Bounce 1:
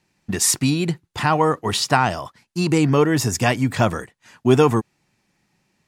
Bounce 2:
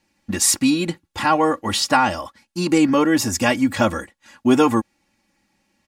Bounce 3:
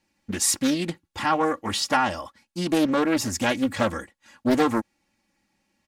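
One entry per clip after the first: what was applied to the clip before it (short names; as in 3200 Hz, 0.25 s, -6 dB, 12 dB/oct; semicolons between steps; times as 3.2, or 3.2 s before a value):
comb 3.6 ms, depth 81%; gain -1 dB
Doppler distortion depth 0.49 ms; gain -5 dB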